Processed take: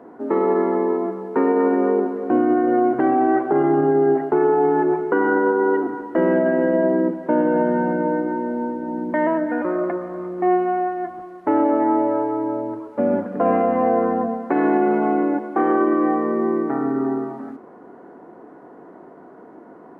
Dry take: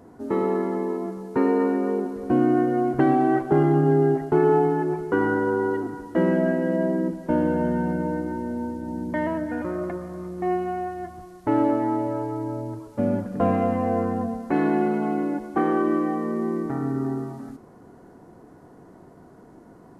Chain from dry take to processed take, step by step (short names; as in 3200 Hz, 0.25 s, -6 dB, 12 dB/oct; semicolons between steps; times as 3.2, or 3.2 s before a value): three-band isolator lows -24 dB, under 230 Hz, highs -21 dB, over 2400 Hz; limiter -17.5 dBFS, peak gain reduction 8 dB; gain +8 dB